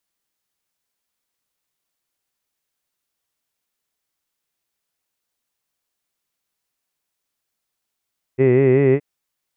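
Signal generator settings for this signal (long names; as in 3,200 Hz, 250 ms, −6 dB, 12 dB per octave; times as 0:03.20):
vowel by formant synthesis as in hid, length 0.62 s, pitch 127 Hz, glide +1.5 semitones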